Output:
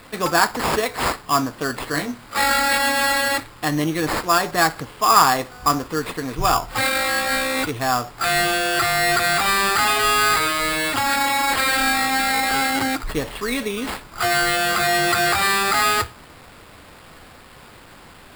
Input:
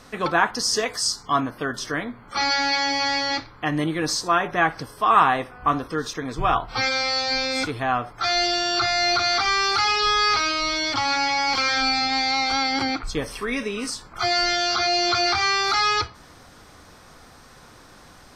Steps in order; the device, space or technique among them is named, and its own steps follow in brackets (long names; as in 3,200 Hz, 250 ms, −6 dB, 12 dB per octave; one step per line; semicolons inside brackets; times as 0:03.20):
early 8-bit sampler (sample-rate reduction 6,100 Hz, jitter 0%; bit reduction 8 bits)
0:01.92–0:03.38: double-tracking delay 20 ms −4.5 dB
level +2.5 dB